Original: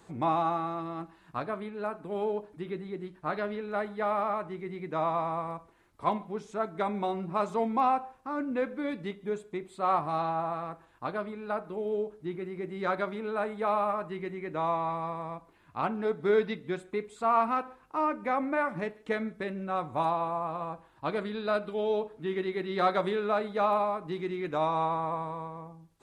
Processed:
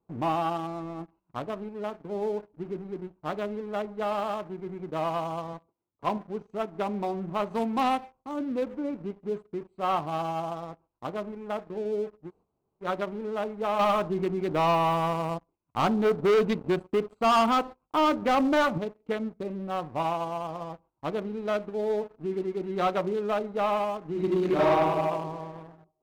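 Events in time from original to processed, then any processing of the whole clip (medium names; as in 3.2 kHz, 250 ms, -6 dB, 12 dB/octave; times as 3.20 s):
5.53–6.17 s: high-pass 91 Hz
7.49–8.03 s: formants flattened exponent 0.6
12.27–12.84 s: room tone, crossfade 0.10 s
13.79–18.78 s: waveshaping leveller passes 2
24.11–24.64 s: reverb throw, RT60 1.8 s, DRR -9 dB
whole clip: local Wiener filter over 25 samples; gate -56 dBFS, range -9 dB; waveshaping leveller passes 2; trim -5.5 dB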